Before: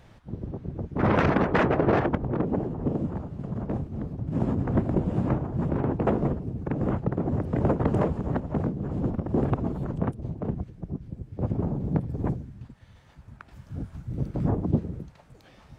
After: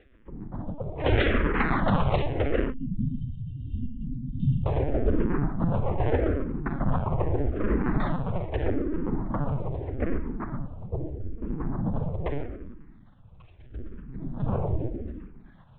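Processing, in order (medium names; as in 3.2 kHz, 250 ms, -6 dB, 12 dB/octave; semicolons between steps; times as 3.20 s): feedback echo behind a high-pass 584 ms, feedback 38%, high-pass 1.5 kHz, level -12 dB; 9.34–9.83 s: compression 6:1, threshold -23 dBFS, peak gain reduction 5 dB; square tremolo 7.5 Hz, depth 65%, duty 20%; Chebyshev shaper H 8 -8 dB, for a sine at -10.5 dBFS; 7.78–8.61 s: overload inside the chain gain 17 dB; simulated room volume 3500 m³, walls furnished, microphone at 5.1 m; 2.72–4.66 s: spectral selection erased 300–2700 Hz; LPC vocoder at 8 kHz pitch kept; barber-pole phaser -0.8 Hz; trim -3 dB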